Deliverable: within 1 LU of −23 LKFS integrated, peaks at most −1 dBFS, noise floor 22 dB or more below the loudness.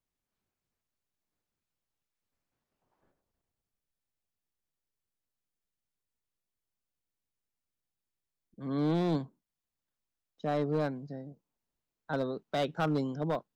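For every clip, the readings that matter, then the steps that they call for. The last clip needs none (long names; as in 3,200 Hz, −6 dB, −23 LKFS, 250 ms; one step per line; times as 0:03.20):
share of clipped samples 0.5%; peaks flattened at −24.0 dBFS; number of dropouts 1; longest dropout 1.6 ms; integrated loudness −33.0 LKFS; sample peak −24.0 dBFS; target loudness −23.0 LKFS
→ clipped peaks rebuilt −24 dBFS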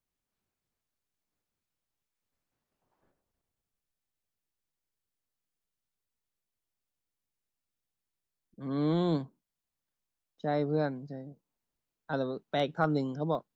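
share of clipped samples 0.0%; number of dropouts 1; longest dropout 1.6 ms
→ repair the gap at 0:13.35, 1.6 ms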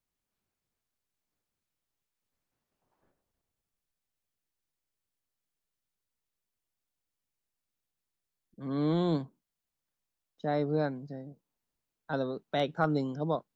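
number of dropouts 0; integrated loudness −32.0 LKFS; sample peak −15.0 dBFS; target loudness −23.0 LKFS
→ level +9 dB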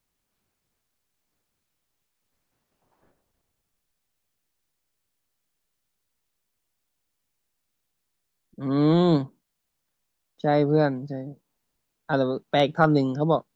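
integrated loudness −23.0 LKFS; sample peak −6.0 dBFS; background noise floor −79 dBFS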